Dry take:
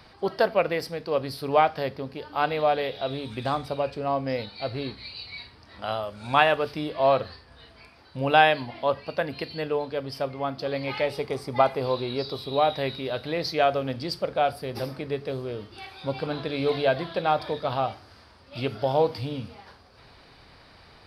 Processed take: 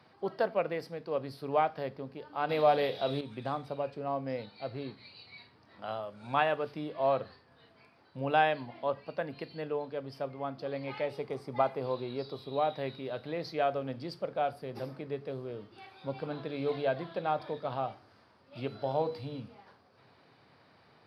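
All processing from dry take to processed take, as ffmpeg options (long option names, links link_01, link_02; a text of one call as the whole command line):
ffmpeg -i in.wav -filter_complex "[0:a]asettb=1/sr,asplit=3[link_01][link_02][link_03];[link_01]atrim=end=2.494[link_04];[link_02]atrim=start=2.49:end=3.21,asetpts=PTS-STARTPTS,afade=type=in:duration=0.004:curve=qsin,afade=type=out:start_time=0.716:duration=0.004:curve=qsin,bass=frequency=250:gain=0,treble=frequency=4000:gain=10,acontrast=40,asplit=2[link_05][link_06];[link_06]adelay=35,volume=-12dB[link_07];[link_05][link_07]amix=inputs=2:normalize=0,atrim=end_sample=31752[link_08];[link_03]atrim=start=3.206[link_09];[link_04][link_08]acrossfade=duration=0.004:curve1=hsin:curve2=qsin[link_10];[link_10][link_09]acrossfade=duration=0.004:curve1=qsin:curve2=hsin,asettb=1/sr,asplit=3[link_11][link_12][link_13];[link_11]atrim=end=18.674[link_14];[link_12]atrim=start=18.67:end=19.4,asetpts=PTS-STARTPTS,afade=type=in:duration=0.004:curve=qsin,afade=type=out:start_time=0.726:duration=0.004:curve=qsin,bandreject=frequency=60:width_type=h:width=6,bandreject=frequency=120:width_type=h:width=6,bandreject=frequency=180:width_type=h:width=6,bandreject=frequency=240:width_type=h:width=6,bandreject=frequency=300:width_type=h:width=6,bandreject=frequency=360:width_type=h:width=6,bandreject=frequency=420:width_type=h:width=6,bandreject=frequency=480:width_type=h:width=6,bandreject=frequency=540:width_type=h:width=6,aeval=exprs='val(0)+0.00562*sin(2*PI*4000*n/s)':channel_layout=same[link_15];[link_13]atrim=start=19.396[link_16];[link_14][link_15]acrossfade=duration=0.004:curve1=hsin:curve2=qsin[link_17];[link_17][link_16]acrossfade=duration=0.004:curve1=qsin:curve2=hsin,highpass=frequency=110:width=0.5412,highpass=frequency=110:width=1.3066,highshelf=frequency=2800:gain=-10,volume=-7dB" out.wav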